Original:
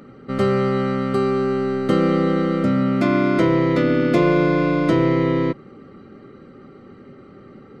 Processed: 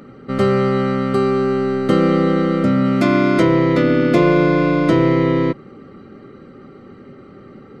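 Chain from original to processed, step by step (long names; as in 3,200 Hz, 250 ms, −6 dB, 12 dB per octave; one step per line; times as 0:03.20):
0:02.84–0:03.43: high-shelf EQ 4,300 Hz +6 dB
level +3 dB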